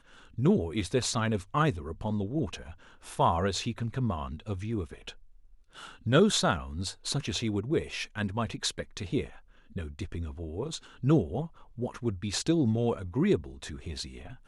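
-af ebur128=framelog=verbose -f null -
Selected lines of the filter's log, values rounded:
Integrated loudness:
  I:         -30.4 LUFS
  Threshold: -41.1 LUFS
Loudness range:
  LRA:         3.9 LU
  Threshold: -51.3 LUFS
  LRA low:   -33.5 LUFS
  LRA high:  -29.6 LUFS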